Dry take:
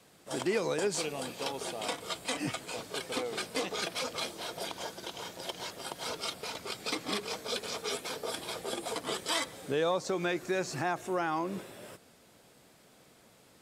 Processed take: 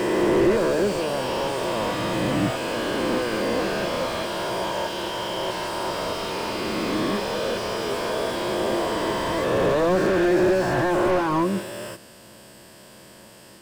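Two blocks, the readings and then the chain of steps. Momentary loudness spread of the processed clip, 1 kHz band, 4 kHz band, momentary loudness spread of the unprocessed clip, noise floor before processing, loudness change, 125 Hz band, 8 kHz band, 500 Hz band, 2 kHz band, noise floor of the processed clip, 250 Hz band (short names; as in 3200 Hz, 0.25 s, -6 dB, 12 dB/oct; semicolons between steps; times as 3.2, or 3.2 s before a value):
8 LU, +11.0 dB, +5.5 dB, 9 LU, -61 dBFS, +11.0 dB, +14.0 dB, +2.0 dB, +12.5 dB, +9.5 dB, -47 dBFS, +14.5 dB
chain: spectral swells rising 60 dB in 2.77 s; ripple EQ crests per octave 1.3, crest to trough 7 dB; slew limiter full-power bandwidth 28 Hz; gain +9 dB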